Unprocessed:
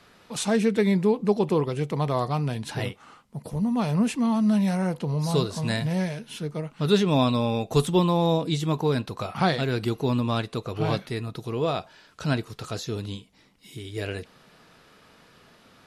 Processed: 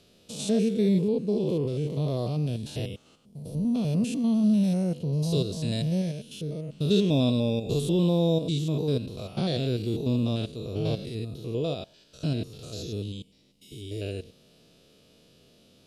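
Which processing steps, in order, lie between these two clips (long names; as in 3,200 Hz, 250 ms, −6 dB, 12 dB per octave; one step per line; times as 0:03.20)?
spectrum averaged block by block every 100 ms
flat-topped bell 1,300 Hz −15.5 dB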